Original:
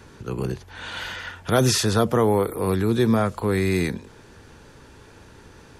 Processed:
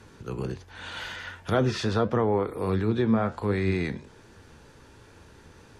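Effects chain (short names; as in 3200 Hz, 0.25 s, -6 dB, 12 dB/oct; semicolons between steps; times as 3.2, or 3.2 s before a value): treble ducked by the level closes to 2300 Hz, closed at -14.5 dBFS; flange 1.4 Hz, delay 8.6 ms, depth 6.3 ms, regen +73%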